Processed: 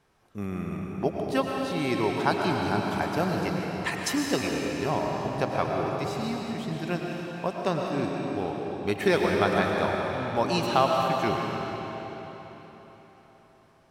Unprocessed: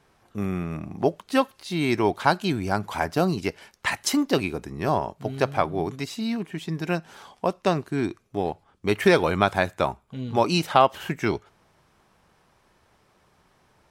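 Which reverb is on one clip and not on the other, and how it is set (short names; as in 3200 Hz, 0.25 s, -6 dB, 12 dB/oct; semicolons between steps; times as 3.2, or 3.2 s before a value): digital reverb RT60 4.2 s, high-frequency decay 0.9×, pre-delay 70 ms, DRR -0.5 dB; gain -5.5 dB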